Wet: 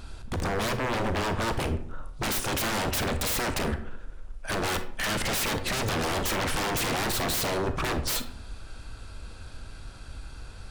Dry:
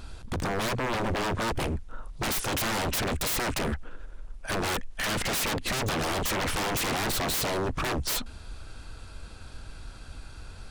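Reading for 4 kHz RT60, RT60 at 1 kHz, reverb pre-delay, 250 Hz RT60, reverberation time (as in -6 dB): 0.35 s, 0.55 s, 30 ms, 0.80 s, 0.60 s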